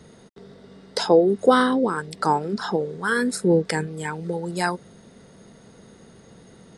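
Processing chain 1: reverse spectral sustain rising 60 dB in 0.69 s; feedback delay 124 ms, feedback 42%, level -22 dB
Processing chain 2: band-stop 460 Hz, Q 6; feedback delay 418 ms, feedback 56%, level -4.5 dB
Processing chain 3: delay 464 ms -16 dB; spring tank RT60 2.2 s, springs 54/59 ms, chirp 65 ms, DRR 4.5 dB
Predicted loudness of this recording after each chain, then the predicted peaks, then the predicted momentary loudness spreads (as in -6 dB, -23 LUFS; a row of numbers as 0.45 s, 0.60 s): -20.0 LUFS, -22.0 LUFS, -21.0 LUFS; -2.5 dBFS, -3.5 dBFS, -3.0 dBFS; 12 LU, 17 LU, 15 LU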